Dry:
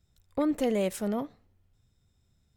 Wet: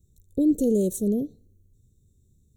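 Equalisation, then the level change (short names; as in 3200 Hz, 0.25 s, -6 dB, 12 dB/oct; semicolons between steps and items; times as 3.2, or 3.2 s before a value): elliptic band-stop 430–5000 Hz, stop band 60 dB; Butterworth band-stop 5000 Hz, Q 2.9; +8.0 dB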